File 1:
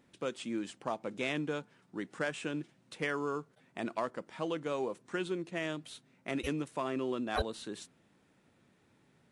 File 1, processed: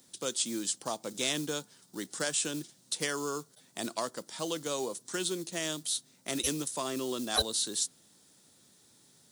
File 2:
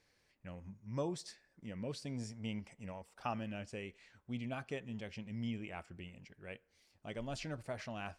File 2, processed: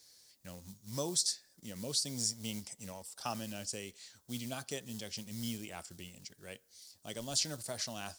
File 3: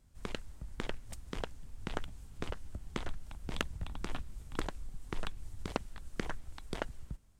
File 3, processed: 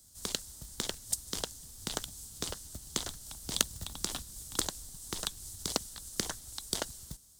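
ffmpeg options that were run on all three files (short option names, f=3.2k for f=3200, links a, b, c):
-filter_complex "[0:a]highpass=f=80:p=1,acrossover=split=250|3900[a][b][c];[a]acrusher=bits=5:mode=log:mix=0:aa=0.000001[d];[d][b][c]amix=inputs=3:normalize=0,aexciter=amount=9.3:drive=4.1:freq=3.6k"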